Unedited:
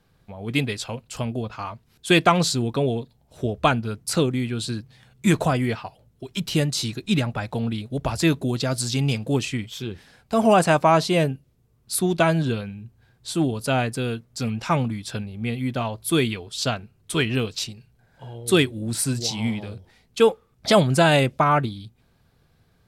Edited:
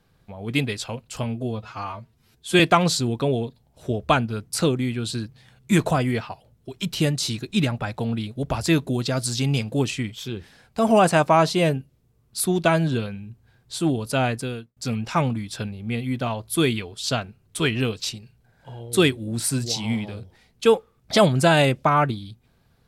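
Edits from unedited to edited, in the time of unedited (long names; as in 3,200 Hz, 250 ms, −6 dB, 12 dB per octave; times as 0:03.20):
0:01.23–0:02.14: time-stretch 1.5×
0:13.90–0:14.31: fade out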